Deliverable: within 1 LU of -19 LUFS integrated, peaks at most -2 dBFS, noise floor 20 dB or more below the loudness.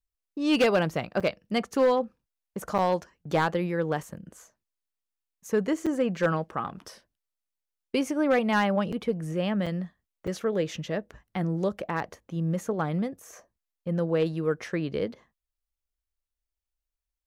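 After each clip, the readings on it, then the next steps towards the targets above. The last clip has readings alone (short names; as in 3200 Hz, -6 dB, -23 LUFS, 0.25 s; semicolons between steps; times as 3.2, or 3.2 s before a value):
clipped 0.4%; flat tops at -16.5 dBFS; dropouts 6; longest dropout 6.0 ms; loudness -28.0 LUFS; peak -16.5 dBFS; loudness target -19.0 LUFS
-> clip repair -16.5 dBFS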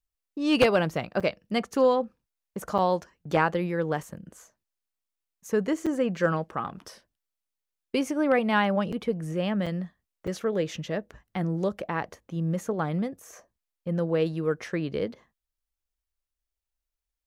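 clipped 0.0%; dropouts 6; longest dropout 6.0 ms
-> interpolate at 1.2/2.78/5.86/8.92/9.66/10.27, 6 ms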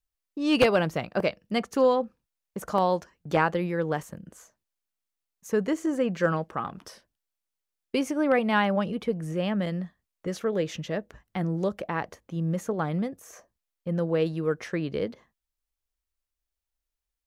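dropouts 0; loudness -28.0 LUFS; peak -7.5 dBFS; loudness target -19.0 LUFS
-> gain +9 dB; limiter -2 dBFS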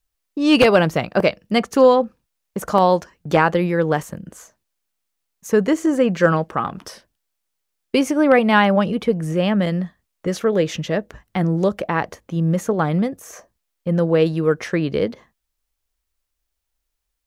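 loudness -19.0 LUFS; peak -2.0 dBFS; noise floor -77 dBFS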